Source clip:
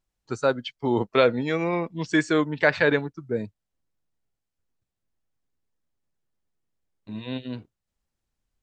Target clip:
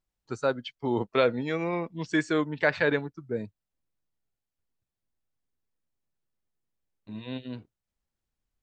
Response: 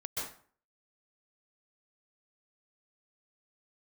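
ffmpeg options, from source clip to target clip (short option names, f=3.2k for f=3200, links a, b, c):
-filter_complex "[0:a]asplit=2[a][b];[1:a]atrim=start_sample=2205,atrim=end_sample=4410,lowpass=5.4k[c];[b][c]afir=irnorm=-1:irlink=0,volume=-11dB[d];[a][d]amix=inputs=2:normalize=0,volume=-5.5dB"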